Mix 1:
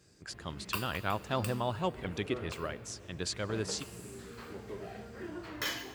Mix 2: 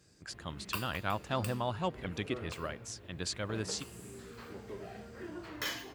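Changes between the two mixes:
speech: add bell 410 Hz -5 dB 0.33 oct; reverb: off

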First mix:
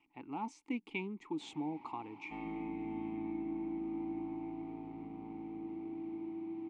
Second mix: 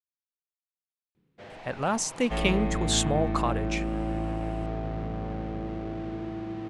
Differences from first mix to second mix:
speech: entry +1.50 s; master: remove vowel filter u

